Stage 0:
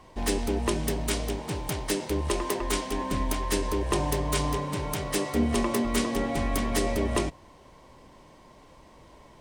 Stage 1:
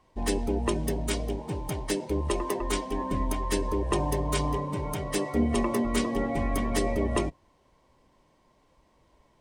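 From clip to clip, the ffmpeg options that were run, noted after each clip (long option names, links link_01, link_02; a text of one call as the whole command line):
ffmpeg -i in.wav -af "afftdn=noise_reduction=12:noise_floor=-35" out.wav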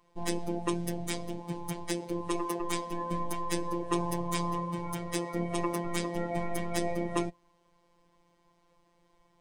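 ffmpeg -i in.wav -af "afftfilt=real='hypot(re,im)*cos(PI*b)':imag='0':win_size=1024:overlap=0.75" out.wav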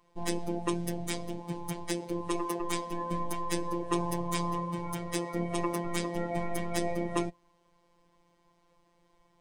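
ffmpeg -i in.wav -af anull out.wav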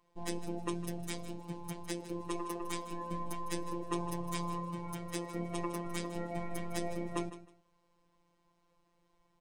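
ffmpeg -i in.wav -af "aecho=1:1:156|312:0.2|0.0439,volume=-6dB" out.wav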